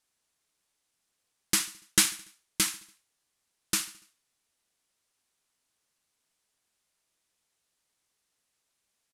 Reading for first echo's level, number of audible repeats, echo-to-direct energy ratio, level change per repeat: -20.5 dB, 3, -19.0 dB, -5.5 dB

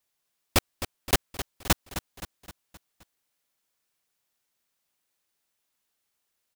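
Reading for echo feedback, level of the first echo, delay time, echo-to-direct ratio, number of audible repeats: 51%, -11.5 dB, 0.261 s, -10.0 dB, 5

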